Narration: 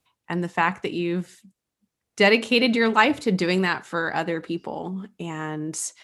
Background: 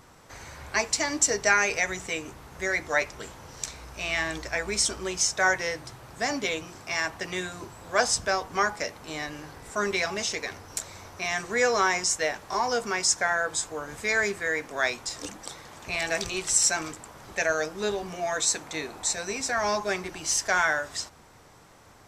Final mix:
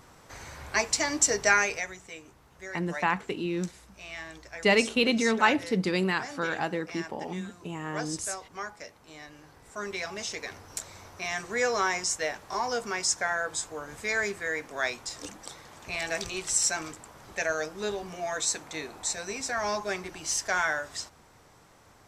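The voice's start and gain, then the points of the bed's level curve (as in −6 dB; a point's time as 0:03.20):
2.45 s, −5.0 dB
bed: 0:01.58 −0.5 dB
0:02.00 −12.5 dB
0:09.20 −12.5 dB
0:10.59 −3.5 dB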